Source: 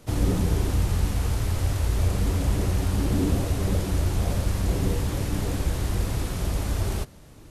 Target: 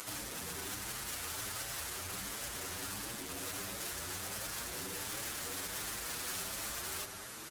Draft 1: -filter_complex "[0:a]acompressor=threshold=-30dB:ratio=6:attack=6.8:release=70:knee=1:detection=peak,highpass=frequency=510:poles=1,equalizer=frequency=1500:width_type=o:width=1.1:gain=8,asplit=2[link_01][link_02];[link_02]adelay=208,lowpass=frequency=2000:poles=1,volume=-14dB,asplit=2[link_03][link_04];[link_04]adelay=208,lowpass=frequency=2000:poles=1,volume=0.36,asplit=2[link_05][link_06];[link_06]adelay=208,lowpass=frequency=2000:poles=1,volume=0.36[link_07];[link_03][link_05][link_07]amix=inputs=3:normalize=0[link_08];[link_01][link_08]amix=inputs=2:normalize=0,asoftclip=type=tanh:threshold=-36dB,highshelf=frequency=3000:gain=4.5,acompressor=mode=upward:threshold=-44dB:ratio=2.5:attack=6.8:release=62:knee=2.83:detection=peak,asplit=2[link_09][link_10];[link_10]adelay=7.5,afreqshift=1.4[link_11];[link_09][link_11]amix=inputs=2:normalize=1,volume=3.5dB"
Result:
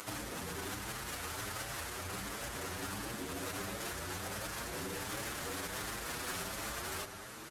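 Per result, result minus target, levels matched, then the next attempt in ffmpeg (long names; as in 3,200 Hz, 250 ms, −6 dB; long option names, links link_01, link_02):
soft clipping: distortion −7 dB; 8,000 Hz band −2.5 dB
-filter_complex "[0:a]acompressor=threshold=-30dB:ratio=6:attack=6.8:release=70:knee=1:detection=peak,highpass=frequency=510:poles=1,equalizer=frequency=1500:width_type=o:width=1.1:gain=8,asplit=2[link_01][link_02];[link_02]adelay=208,lowpass=frequency=2000:poles=1,volume=-14dB,asplit=2[link_03][link_04];[link_04]adelay=208,lowpass=frequency=2000:poles=1,volume=0.36,asplit=2[link_05][link_06];[link_06]adelay=208,lowpass=frequency=2000:poles=1,volume=0.36[link_07];[link_03][link_05][link_07]amix=inputs=3:normalize=0[link_08];[link_01][link_08]amix=inputs=2:normalize=0,asoftclip=type=tanh:threshold=-44dB,highshelf=frequency=3000:gain=4.5,acompressor=mode=upward:threshold=-44dB:ratio=2.5:attack=6.8:release=62:knee=2.83:detection=peak,asplit=2[link_09][link_10];[link_10]adelay=7.5,afreqshift=1.4[link_11];[link_09][link_11]amix=inputs=2:normalize=1,volume=3.5dB"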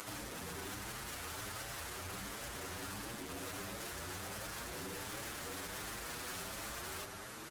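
8,000 Hz band −2.5 dB
-filter_complex "[0:a]acompressor=threshold=-30dB:ratio=6:attack=6.8:release=70:knee=1:detection=peak,highpass=frequency=510:poles=1,equalizer=frequency=1500:width_type=o:width=1.1:gain=8,asplit=2[link_01][link_02];[link_02]adelay=208,lowpass=frequency=2000:poles=1,volume=-14dB,asplit=2[link_03][link_04];[link_04]adelay=208,lowpass=frequency=2000:poles=1,volume=0.36,asplit=2[link_05][link_06];[link_06]adelay=208,lowpass=frequency=2000:poles=1,volume=0.36[link_07];[link_03][link_05][link_07]amix=inputs=3:normalize=0[link_08];[link_01][link_08]amix=inputs=2:normalize=0,asoftclip=type=tanh:threshold=-44dB,highshelf=frequency=3000:gain=12.5,acompressor=mode=upward:threshold=-44dB:ratio=2.5:attack=6.8:release=62:knee=2.83:detection=peak,asplit=2[link_09][link_10];[link_10]adelay=7.5,afreqshift=1.4[link_11];[link_09][link_11]amix=inputs=2:normalize=1,volume=3.5dB"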